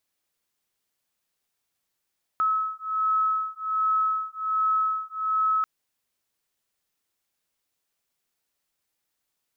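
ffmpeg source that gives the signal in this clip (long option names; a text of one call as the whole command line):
ffmpeg -f lavfi -i "aevalsrc='0.0531*(sin(2*PI*1290*t)+sin(2*PI*1291.3*t))':duration=3.24:sample_rate=44100" out.wav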